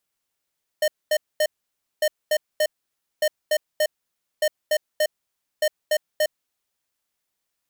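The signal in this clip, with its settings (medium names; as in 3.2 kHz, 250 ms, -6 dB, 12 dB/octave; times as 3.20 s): beep pattern square 611 Hz, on 0.06 s, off 0.23 s, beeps 3, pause 0.56 s, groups 5, -19.5 dBFS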